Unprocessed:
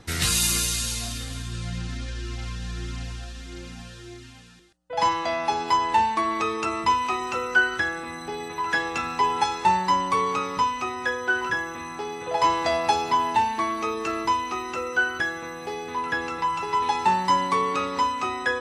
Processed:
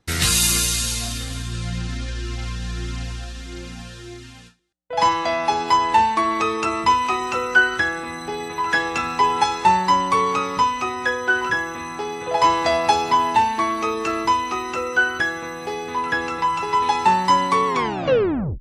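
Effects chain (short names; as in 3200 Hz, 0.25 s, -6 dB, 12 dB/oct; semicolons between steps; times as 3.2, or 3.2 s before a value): tape stop at the end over 0.94 s; gate with hold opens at -36 dBFS; gain +4.5 dB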